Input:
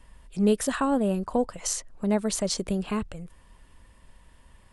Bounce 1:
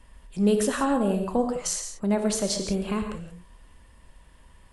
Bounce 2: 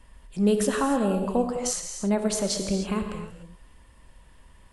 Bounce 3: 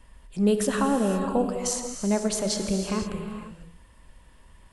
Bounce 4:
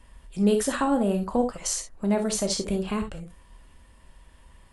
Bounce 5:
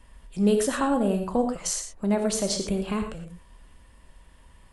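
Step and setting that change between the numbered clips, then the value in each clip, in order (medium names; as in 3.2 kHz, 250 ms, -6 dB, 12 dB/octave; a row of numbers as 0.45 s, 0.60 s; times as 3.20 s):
gated-style reverb, gate: 200 ms, 320 ms, 530 ms, 90 ms, 140 ms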